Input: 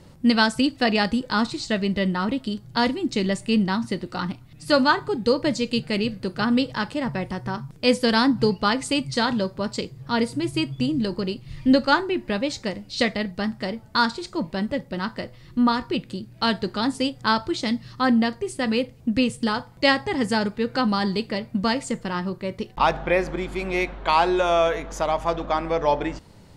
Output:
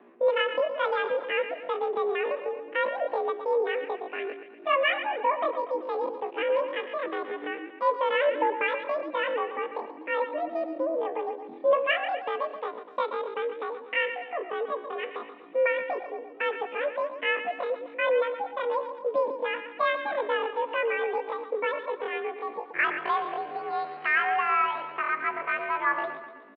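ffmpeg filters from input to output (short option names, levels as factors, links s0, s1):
-af "aecho=1:1:121|242|363|484|605|726:0.316|0.161|0.0823|0.0419|0.0214|0.0109,asetrate=83250,aresample=44100,atempo=0.529732,highpass=f=170:t=q:w=0.5412,highpass=f=170:t=q:w=1.307,lowpass=f=2700:t=q:w=0.5176,lowpass=f=2700:t=q:w=0.7071,lowpass=f=2700:t=q:w=1.932,afreqshift=62,volume=0.562"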